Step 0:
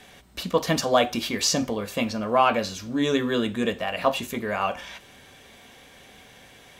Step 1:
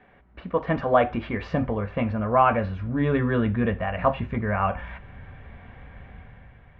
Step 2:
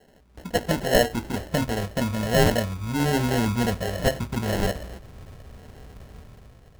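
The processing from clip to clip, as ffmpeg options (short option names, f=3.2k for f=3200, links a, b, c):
-af "lowpass=f=2k:w=0.5412,lowpass=f=2k:w=1.3066,asubboost=boost=9.5:cutoff=110,dynaudnorm=f=120:g=11:m=7.5dB,volume=-4dB"
-af "acrusher=samples=37:mix=1:aa=0.000001"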